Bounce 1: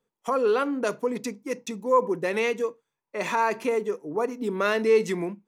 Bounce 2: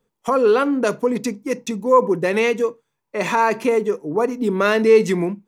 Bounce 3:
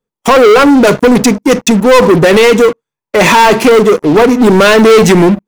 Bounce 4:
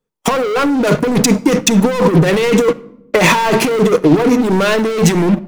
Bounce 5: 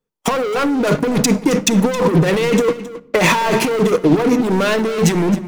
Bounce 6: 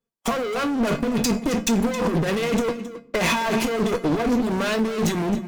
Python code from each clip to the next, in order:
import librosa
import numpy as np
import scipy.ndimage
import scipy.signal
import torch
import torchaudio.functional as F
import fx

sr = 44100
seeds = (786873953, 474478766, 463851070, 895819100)

y1 = fx.low_shelf(x, sr, hz=190.0, db=8.0)
y1 = y1 * librosa.db_to_amplitude(6.0)
y2 = fx.leveller(y1, sr, passes=5)
y2 = y2 * librosa.db_to_amplitude(2.0)
y3 = fx.over_compress(y2, sr, threshold_db=-8.0, ratio=-0.5)
y3 = fx.room_shoebox(y3, sr, seeds[0], volume_m3=2200.0, walls='furnished', distance_m=0.53)
y3 = y3 * librosa.db_to_amplitude(-3.0)
y4 = y3 + 10.0 ** (-15.5 / 20.0) * np.pad(y3, (int(268 * sr / 1000.0), 0))[:len(y3)]
y4 = y4 * librosa.db_to_amplitude(-3.0)
y5 = fx.comb_fb(y4, sr, f0_hz=230.0, decay_s=0.23, harmonics='odd', damping=0.0, mix_pct=80)
y5 = fx.clip_asym(y5, sr, top_db=-31.0, bottom_db=-19.5)
y5 = y5 * librosa.db_to_amplitude(6.5)